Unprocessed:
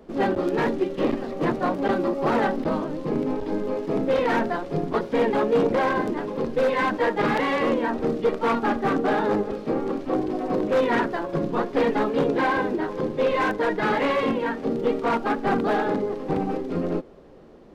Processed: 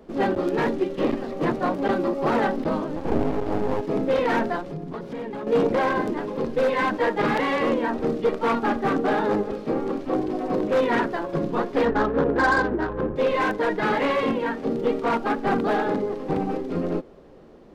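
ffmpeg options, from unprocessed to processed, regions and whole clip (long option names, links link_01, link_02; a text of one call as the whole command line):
ffmpeg -i in.wav -filter_complex "[0:a]asettb=1/sr,asplit=3[link_01][link_02][link_03];[link_01]atrim=end=2.964[link_04];[link_02]atrim=start=2.96:end=3.81,asetpts=PTS-STARTPTS,afade=type=in:duration=0.004:curve=qsin,afade=type=out:start_time=0.846:duration=0.004:curve=qsin,equalizer=frequency=400:width_type=o:width=2.8:gain=7,bandreject=frequency=970:width=6.4,aeval=exprs='max(val(0),0)':channel_layout=same[link_05];[link_03]atrim=start=3.806[link_06];[link_04][link_05]acrossfade=duration=0.004:curve1=hsin:curve2=qsin[link_07];[link_07][link_06]acrossfade=duration=0.004:curve1=qsin:curve2=hsin,asettb=1/sr,asplit=3[link_08][link_09][link_10];[link_08]atrim=end=4.614[link_11];[link_09]atrim=start=4.61:end=5.47,asetpts=PTS-STARTPTS,afade=type=in:duration=0.004:curve=qsin,afade=type=out:start_time=0.856:duration=0.004:curve=qsin,equalizer=frequency=160:width=1.4:gain=7.5,acompressor=threshold=-31dB:ratio=4:attack=3.2:release=140:knee=1:detection=peak[link_12];[link_10]atrim=start=5.466[link_13];[link_11][link_12]acrossfade=duration=0.004:curve1=hsin:curve2=qsin[link_14];[link_14][link_13]acrossfade=duration=0.004:curve1=qsin:curve2=hsin,asettb=1/sr,asplit=3[link_15][link_16][link_17];[link_15]atrim=end=11.854[link_18];[link_16]atrim=start=11.85:end=13.16,asetpts=PTS-STARTPTS,afade=type=in:duration=0.004:curve=qsin,afade=type=out:start_time=1.306:duration=0.004:curve=qsin,highshelf=frequency=2200:width_type=q:width=3:gain=-11,adynamicsmooth=sensitivity=1.5:basefreq=1300,aeval=exprs='val(0)+0.0158*(sin(2*PI*60*n/s)+sin(2*PI*2*60*n/s)/2+sin(2*PI*3*60*n/s)/3+sin(2*PI*4*60*n/s)/4+sin(2*PI*5*60*n/s)/5)':channel_layout=same[link_19];[link_17]atrim=start=13.156[link_20];[link_18][link_19]acrossfade=duration=0.004:curve1=hsin:curve2=qsin[link_21];[link_21][link_20]acrossfade=duration=0.004:curve1=qsin:curve2=hsin" out.wav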